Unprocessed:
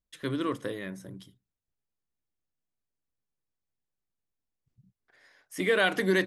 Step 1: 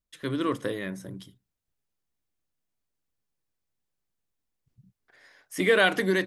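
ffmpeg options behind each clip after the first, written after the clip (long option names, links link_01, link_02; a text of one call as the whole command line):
ffmpeg -i in.wav -af "dynaudnorm=framelen=110:gausssize=7:maxgain=4dB" out.wav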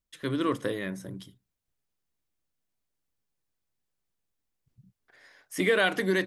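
ffmpeg -i in.wav -af "alimiter=limit=-13dB:level=0:latency=1:release=484" out.wav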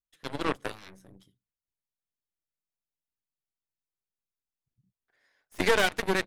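ffmpeg -i in.wav -af "aeval=exprs='0.237*(cos(1*acos(clip(val(0)/0.237,-1,1)))-cos(1*PI/2))+0.0106*(cos(3*acos(clip(val(0)/0.237,-1,1)))-cos(3*PI/2))+0.0473*(cos(4*acos(clip(val(0)/0.237,-1,1)))-cos(4*PI/2))+0.0237*(cos(5*acos(clip(val(0)/0.237,-1,1)))-cos(5*PI/2))+0.0531*(cos(7*acos(clip(val(0)/0.237,-1,1)))-cos(7*PI/2))':channel_layout=same" out.wav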